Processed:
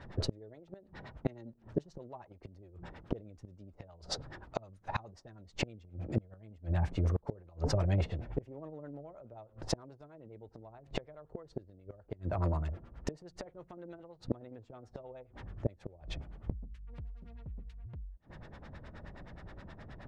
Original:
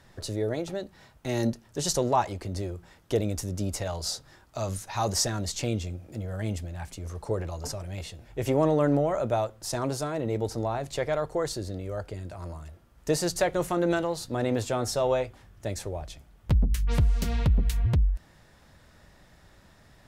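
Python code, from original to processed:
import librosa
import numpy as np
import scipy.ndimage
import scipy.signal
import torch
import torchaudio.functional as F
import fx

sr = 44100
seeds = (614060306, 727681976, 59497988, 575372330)

y = fx.filter_lfo_lowpass(x, sr, shape='sine', hz=9.5, low_hz=380.0, high_hz=3800.0, q=0.71)
y = fx.gate_flip(y, sr, shuts_db=-26.0, range_db=-30)
y = y * 10.0 ** (7.5 / 20.0)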